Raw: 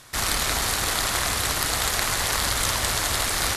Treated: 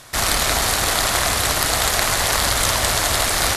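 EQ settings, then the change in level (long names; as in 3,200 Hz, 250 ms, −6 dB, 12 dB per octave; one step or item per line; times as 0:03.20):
parametric band 650 Hz +4.5 dB 0.55 octaves
+5.0 dB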